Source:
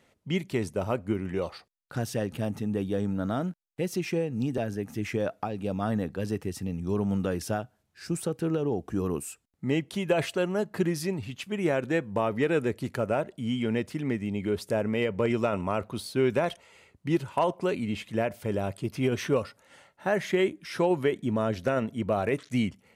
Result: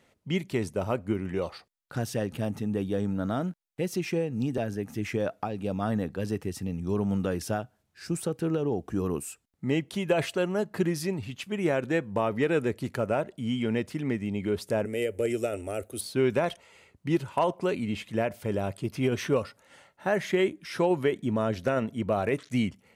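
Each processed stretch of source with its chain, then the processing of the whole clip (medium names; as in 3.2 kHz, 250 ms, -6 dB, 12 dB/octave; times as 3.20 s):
14.85–16.01 s: resonant high shelf 6.6 kHz +12 dB, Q 1.5 + static phaser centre 420 Hz, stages 4
whole clip: none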